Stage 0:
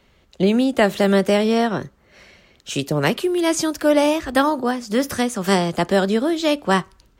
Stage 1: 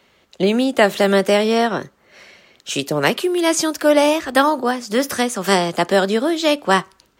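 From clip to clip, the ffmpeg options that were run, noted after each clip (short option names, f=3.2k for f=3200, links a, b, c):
-af "highpass=f=340:p=1,volume=4dB"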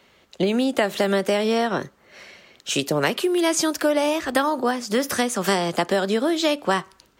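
-af "acompressor=threshold=-17dB:ratio=6"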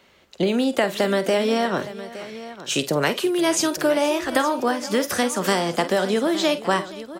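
-af "aecho=1:1:47|49|476|864:0.112|0.211|0.119|0.178"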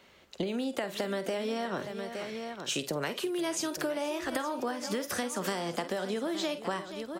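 -af "acompressor=threshold=-27dB:ratio=6,volume=-3dB"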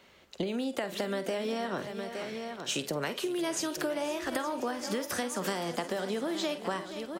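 -af "aecho=1:1:521|1042|1563|2084|2605:0.15|0.0793|0.042|0.0223|0.0118"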